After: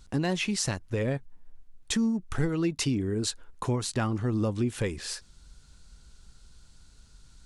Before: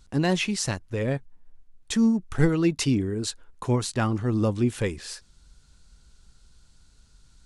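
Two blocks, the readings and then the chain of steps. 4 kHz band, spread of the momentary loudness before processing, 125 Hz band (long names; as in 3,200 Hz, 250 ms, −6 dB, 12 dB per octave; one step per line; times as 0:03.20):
−1.5 dB, 11 LU, −4.0 dB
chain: downward compressor 3 to 1, threshold −28 dBFS, peak gain reduction 10 dB
level +2 dB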